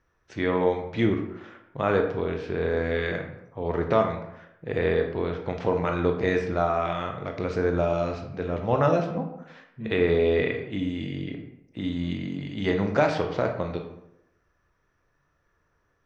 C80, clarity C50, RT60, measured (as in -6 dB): 10.0 dB, 7.0 dB, 0.85 s